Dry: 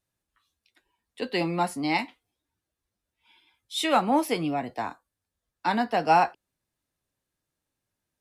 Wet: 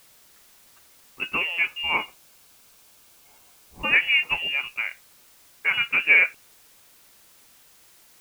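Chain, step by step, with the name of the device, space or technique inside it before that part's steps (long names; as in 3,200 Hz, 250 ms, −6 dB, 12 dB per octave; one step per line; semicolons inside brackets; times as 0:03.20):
scrambled radio voice (band-pass filter 310–2,800 Hz; voice inversion scrambler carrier 3,100 Hz; white noise bed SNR 27 dB)
0:01.56–0:03.81: notch filter 1,900 Hz, Q 8.4
level +3 dB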